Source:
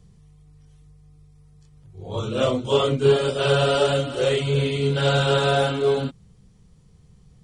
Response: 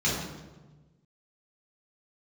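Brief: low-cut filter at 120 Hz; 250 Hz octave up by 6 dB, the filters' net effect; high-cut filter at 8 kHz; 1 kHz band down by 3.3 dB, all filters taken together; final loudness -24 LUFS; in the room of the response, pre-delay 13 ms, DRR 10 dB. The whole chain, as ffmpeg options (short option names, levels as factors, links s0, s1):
-filter_complex "[0:a]highpass=120,lowpass=8000,equalizer=f=250:t=o:g=8.5,equalizer=f=1000:t=o:g=-6,asplit=2[s0][s1];[1:a]atrim=start_sample=2205,adelay=13[s2];[s1][s2]afir=irnorm=-1:irlink=0,volume=0.0794[s3];[s0][s3]amix=inputs=2:normalize=0,volume=0.531"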